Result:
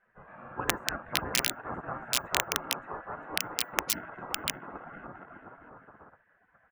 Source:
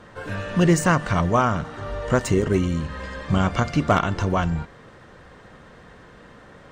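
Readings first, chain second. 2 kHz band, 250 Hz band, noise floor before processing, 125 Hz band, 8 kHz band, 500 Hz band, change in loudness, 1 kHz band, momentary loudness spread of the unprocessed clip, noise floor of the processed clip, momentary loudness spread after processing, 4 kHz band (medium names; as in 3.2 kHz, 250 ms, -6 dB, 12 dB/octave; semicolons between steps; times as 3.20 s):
-5.5 dB, -21.0 dB, -48 dBFS, -25.0 dB, +1.5 dB, -16.5 dB, -9.5 dB, -11.5 dB, 13 LU, -69 dBFS, 18 LU, +3.5 dB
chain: elliptic band-pass 100–1400 Hz, stop band 50 dB; bouncing-ball echo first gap 570 ms, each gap 0.7×, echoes 5; integer overflow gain 8.5 dB; bass shelf 310 Hz -10.5 dB; frequency shift -160 Hz; spectral gate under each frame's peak -15 dB weak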